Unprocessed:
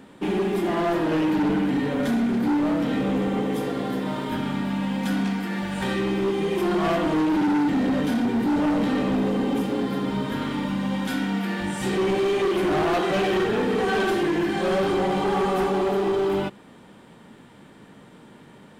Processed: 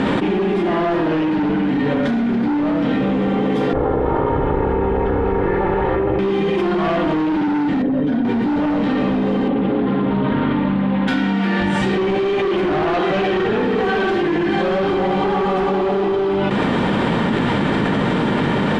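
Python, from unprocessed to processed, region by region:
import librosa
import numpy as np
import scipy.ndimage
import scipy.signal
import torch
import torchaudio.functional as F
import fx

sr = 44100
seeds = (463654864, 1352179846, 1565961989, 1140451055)

y = fx.chain(x, sr, fx.lower_of_two(delay_ms=2.3),
    fx.lowpass(hz=1100.0, slope=12), at=(3.73, 6.19))
y = fx.chain(y, sr, fx.envelope_sharpen(power=1.5),
    fx.comb(ms=7.3, depth=0.48), at=(7.82, 8.25))
y = fx.chain(y, sr, fx.lowpass(hz=3900.0, slope=24),
    fx.high_shelf(hz=2100.0, db=-8.5),
    fx.doppler_dist(depth_ms=0.17), at=(9.48, 11.08))
y = scipy.signal.sosfilt(scipy.signal.butter(2, 3700.0, 'lowpass', fs=sr, output='sos'), y)
y = fx.env_flatten(y, sr, amount_pct=100)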